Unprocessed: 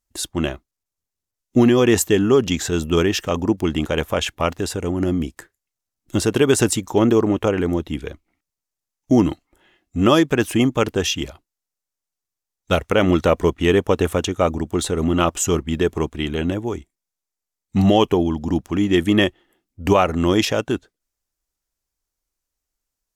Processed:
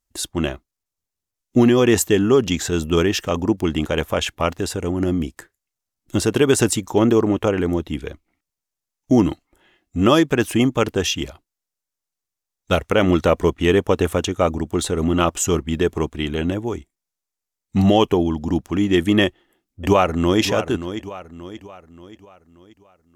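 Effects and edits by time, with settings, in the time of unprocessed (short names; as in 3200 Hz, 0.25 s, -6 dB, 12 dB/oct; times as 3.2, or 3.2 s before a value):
19.25–20.41 echo throw 0.58 s, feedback 45%, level -11 dB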